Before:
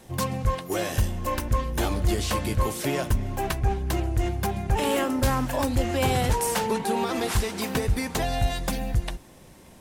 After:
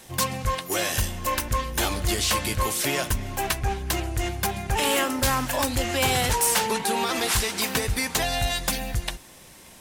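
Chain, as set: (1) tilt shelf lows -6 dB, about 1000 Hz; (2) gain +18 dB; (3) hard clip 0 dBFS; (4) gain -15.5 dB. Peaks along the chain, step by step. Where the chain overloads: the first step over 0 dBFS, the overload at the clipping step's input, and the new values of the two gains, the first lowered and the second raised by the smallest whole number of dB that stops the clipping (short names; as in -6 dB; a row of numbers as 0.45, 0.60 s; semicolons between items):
-8.5, +9.5, 0.0, -15.5 dBFS; step 2, 9.5 dB; step 2 +8 dB, step 4 -5.5 dB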